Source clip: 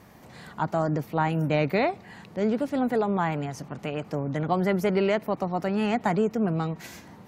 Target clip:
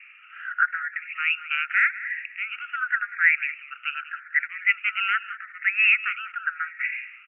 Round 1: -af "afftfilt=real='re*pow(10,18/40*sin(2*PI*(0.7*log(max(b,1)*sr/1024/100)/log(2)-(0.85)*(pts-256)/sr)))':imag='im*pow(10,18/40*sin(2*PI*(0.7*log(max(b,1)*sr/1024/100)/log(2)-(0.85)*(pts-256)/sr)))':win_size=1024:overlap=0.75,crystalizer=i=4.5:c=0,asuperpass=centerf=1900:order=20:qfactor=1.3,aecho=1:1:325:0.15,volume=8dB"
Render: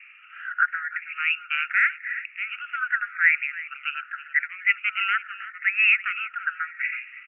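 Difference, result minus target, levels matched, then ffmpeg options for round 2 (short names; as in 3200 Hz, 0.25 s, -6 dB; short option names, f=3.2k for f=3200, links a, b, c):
echo 0.133 s late
-af "afftfilt=real='re*pow(10,18/40*sin(2*PI*(0.7*log(max(b,1)*sr/1024/100)/log(2)-(0.85)*(pts-256)/sr)))':imag='im*pow(10,18/40*sin(2*PI*(0.7*log(max(b,1)*sr/1024/100)/log(2)-(0.85)*(pts-256)/sr)))':win_size=1024:overlap=0.75,crystalizer=i=4.5:c=0,asuperpass=centerf=1900:order=20:qfactor=1.3,aecho=1:1:192:0.15,volume=8dB"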